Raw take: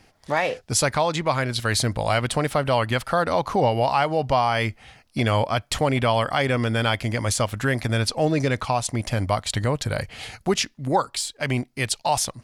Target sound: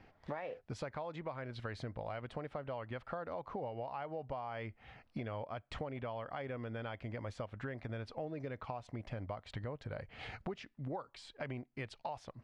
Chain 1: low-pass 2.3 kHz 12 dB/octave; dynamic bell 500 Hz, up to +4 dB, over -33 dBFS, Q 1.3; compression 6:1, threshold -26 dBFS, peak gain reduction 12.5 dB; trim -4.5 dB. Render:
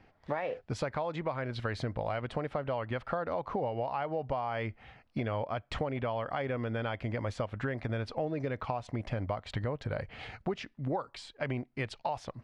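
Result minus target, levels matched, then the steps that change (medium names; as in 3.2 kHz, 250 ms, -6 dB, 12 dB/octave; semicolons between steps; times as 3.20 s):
compression: peak gain reduction -8.5 dB
change: compression 6:1, threshold -36 dBFS, peak gain reduction 21 dB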